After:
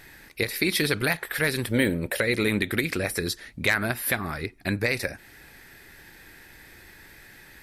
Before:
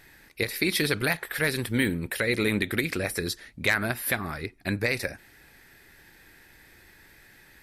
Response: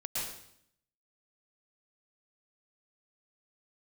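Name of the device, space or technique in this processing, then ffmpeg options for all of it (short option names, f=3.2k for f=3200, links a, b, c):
parallel compression: -filter_complex "[0:a]asettb=1/sr,asplit=3[a][b][c];[a]atrim=end=1.684[d];[b]atrim=start=1.68:end=2.21,asetpts=PTS-STARTPTS,afade=t=in:d=0.004:c=qsin,afade=t=out:st=0.526:d=0.004:c=qsin,equalizer=f=580:t=o:w=0.57:g=13[e];[c]atrim=start=2.206[f];[d][e]acrossfade=d=0.004:c1=hsin:c2=qsin[g];[g][f]acrossfade=d=0.004:c1=qsin:c2=hsin,asplit=2[h][i];[i]acompressor=threshold=-38dB:ratio=6,volume=-2dB[j];[h][j]amix=inputs=2:normalize=0"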